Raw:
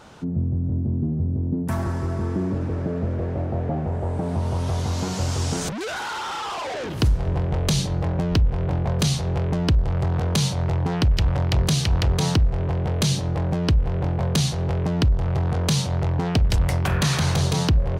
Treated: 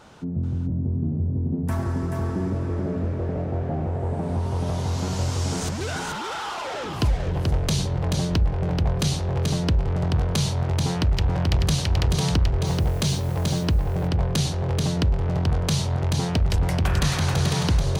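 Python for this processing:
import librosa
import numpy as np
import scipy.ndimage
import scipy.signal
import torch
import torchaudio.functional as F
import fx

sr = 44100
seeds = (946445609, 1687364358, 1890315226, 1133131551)

y = fx.quant_dither(x, sr, seeds[0], bits=8, dither='triangular', at=(12.65, 13.63), fade=0.02)
y = y + 10.0 ** (-4.5 / 20.0) * np.pad(y, (int(433 * sr / 1000.0), 0))[:len(y)]
y = y * 10.0 ** (-2.5 / 20.0)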